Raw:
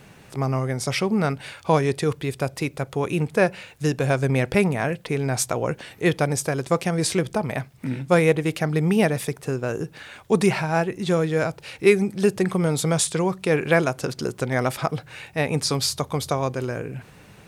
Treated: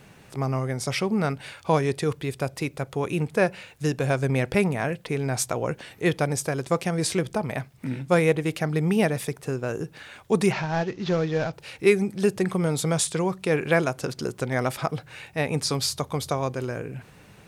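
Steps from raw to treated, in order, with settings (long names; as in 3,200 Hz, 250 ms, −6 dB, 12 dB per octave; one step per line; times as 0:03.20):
0:10.52–0:11.53: variable-slope delta modulation 32 kbit/s
level −2.5 dB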